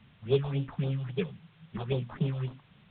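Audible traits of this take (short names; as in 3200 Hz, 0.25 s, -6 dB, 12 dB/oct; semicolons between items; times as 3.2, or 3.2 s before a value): aliases and images of a low sample rate 3000 Hz, jitter 20%; phasing stages 4, 3.7 Hz, lowest notch 320–2000 Hz; a quantiser's noise floor 10-bit, dither triangular; µ-law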